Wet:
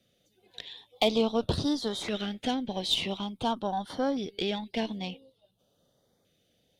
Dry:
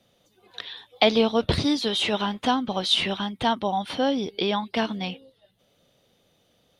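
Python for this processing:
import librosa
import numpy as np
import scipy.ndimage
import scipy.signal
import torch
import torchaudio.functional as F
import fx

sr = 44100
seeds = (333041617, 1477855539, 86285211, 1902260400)

y = fx.cheby_harmonics(x, sr, harmonics=(6, 8), levels_db=(-26, -23), full_scale_db=-4.5)
y = fx.filter_lfo_notch(y, sr, shape='saw_up', hz=0.48, low_hz=890.0, high_hz=2900.0, q=1.0)
y = y * librosa.db_to_amplitude(-5.0)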